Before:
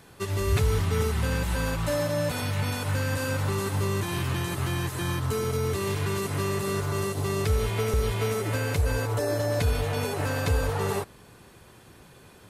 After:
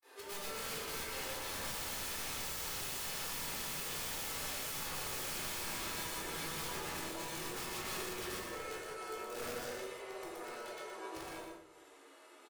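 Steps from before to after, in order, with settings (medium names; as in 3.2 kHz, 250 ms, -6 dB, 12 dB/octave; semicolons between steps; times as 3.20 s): Doppler pass-by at 3.64 s, 35 m/s, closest 17 m; band-stop 890 Hz, Q 20; peak limiter -29 dBFS, peak gain reduction 11 dB; elliptic high-pass 340 Hz, stop band 70 dB; upward compressor, threshold -55 dBFS; hum notches 60/120/180/240/300/360/420/480 Hz; granulator 183 ms, grains 15 per s; formant-preserving pitch shift -1.5 st; flange 0.2 Hz, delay 7.5 ms, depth 4.1 ms, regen +57%; integer overflow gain 51 dB; delay 120 ms -4.5 dB; simulated room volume 850 m³, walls furnished, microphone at 4.1 m; trim +9 dB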